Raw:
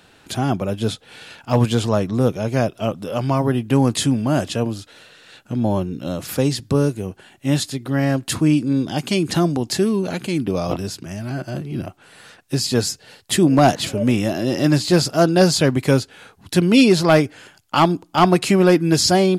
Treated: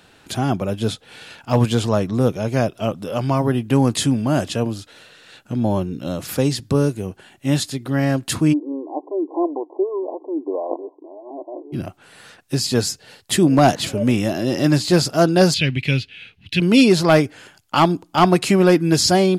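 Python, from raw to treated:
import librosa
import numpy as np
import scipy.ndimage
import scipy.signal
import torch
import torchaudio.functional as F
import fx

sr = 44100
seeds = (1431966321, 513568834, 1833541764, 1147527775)

y = fx.brickwall_bandpass(x, sr, low_hz=280.0, high_hz=1100.0, at=(8.52, 11.72), fade=0.02)
y = fx.curve_eq(y, sr, hz=(140.0, 230.0, 1100.0, 2600.0, 3900.0, 7400.0), db=(0, -6, -19, 12, 2, -15), at=(15.54, 16.6))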